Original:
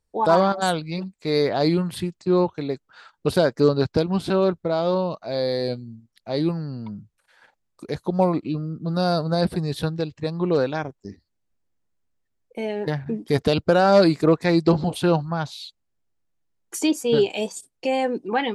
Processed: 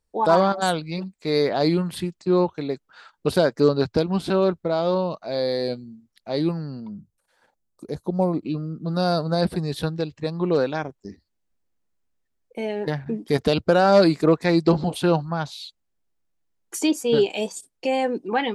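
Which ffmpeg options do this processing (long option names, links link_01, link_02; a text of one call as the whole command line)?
ffmpeg -i in.wav -filter_complex "[0:a]asettb=1/sr,asplit=3[link_01][link_02][link_03];[link_01]atrim=end=6.804[link_04];[link_02]atrim=start=6.8:end=8.46,asetpts=PTS-STARTPTS,afade=type=in:duration=0.004:curve=qsin,afade=type=out:start_time=1.656:duration=0.004:curve=qsin,equalizer=frequency=2200:width_type=o:width=2.4:gain=-11.5[link_05];[link_03]atrim=start=8.456[link_06];[link_04][link_05]acrossfade=duration=0.004:curve1=hsin:curve2=qsin[link_07];[link_07][link_06]acrossfade=duration=0.004:curve1=qsin:curve2=hsin,equalizer=frequency=110:width=5.7:gain=-14.5" out.wav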